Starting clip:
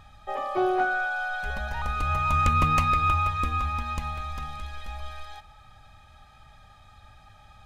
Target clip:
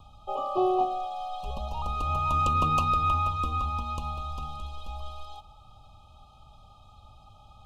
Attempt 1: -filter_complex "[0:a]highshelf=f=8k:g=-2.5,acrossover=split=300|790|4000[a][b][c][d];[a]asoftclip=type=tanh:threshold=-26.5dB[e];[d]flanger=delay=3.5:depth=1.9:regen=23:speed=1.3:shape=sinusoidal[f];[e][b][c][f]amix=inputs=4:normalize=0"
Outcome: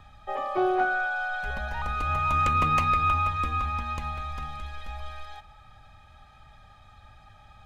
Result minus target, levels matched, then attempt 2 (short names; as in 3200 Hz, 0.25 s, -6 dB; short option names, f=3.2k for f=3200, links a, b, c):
2000 Hz band +11.5 dB
-filter_complex "[0:a]asuperstop=centerf=1800:order=20:qfactor=1.4,highshelf=f=8k:g=-2.5,acrossover=split=300|790|4000[a][b][c][d];[a]asoftclip=type=tanh:threshold=-26.5dB[e];[d]flanger=delay=3.5:depth=1.9:regen=23:speed=1.3:shape=sinusoidal[f];[e][b][c][f]amix=inputs=4:normalize=0"